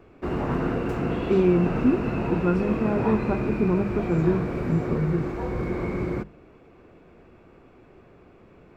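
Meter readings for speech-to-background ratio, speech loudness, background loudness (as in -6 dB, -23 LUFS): 3.5 dB, -25.0 LUFS, -28.5 LUFS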